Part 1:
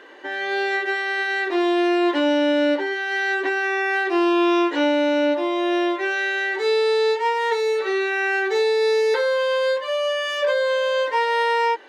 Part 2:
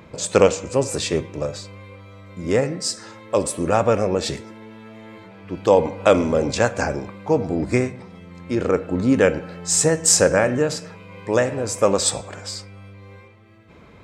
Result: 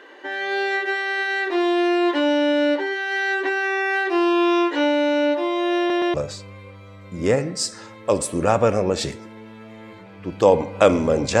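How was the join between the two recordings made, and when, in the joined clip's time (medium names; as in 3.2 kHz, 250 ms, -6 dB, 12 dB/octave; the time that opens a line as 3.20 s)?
part 1
5.78 s: stutter in place 0.12 s, 3 plays
6.14 s: go over to part 2 from 1.39 s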